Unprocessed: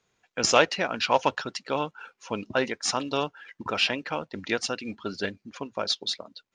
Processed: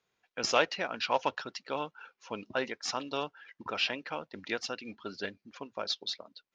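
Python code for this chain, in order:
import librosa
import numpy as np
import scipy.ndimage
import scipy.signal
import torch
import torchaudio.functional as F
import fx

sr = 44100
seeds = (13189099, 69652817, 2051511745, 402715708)

y = scipy.signal.sosfilt(scipy.signal.butter(4, 6100.0, 'lowpass', fs=sr, output='sos'), x)
y = fx.low_shelf(y, sr, hz=210.0, db=-7.0)
y = y * librosa.db_to_amplitude(-6.0)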